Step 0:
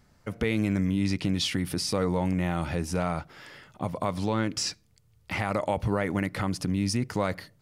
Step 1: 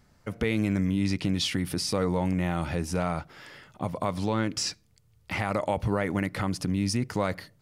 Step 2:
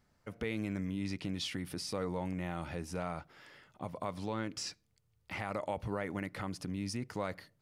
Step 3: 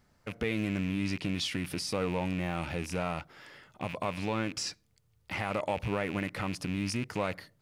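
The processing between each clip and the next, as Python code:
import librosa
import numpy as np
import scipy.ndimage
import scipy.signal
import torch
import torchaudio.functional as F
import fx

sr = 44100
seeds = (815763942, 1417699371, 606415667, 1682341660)

y1 = x
y2 = fx.bass_treble(y1, sr, bass_db=-3, treble_db=-2)
y2 = y2 * librosa.db_to_amplitude(-9.0)
y3 = fx.rattle_buzz(y2, sr, strikes_db=-49.0, level_db=-35.0)
y3 = y3 * librosa.db_to_amplitude(5.0)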